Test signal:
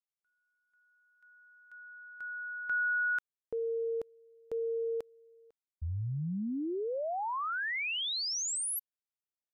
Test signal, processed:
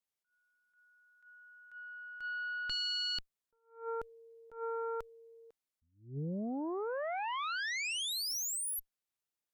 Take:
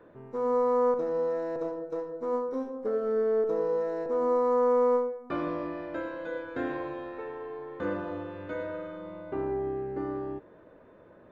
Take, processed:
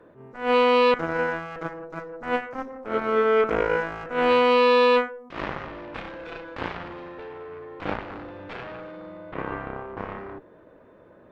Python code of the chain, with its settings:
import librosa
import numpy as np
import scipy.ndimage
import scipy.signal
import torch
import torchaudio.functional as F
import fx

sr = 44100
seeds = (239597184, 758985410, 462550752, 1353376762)

y = fx.cheby_harmonics(x, sr, harmonics=(6, 7), levels_db=(-23, -12), full_scale_db=-17.0)
y = fx.attack_slew(y, sr, db_per_s=150.0)
y = y * 10.0 ** (5.0 / 20.0)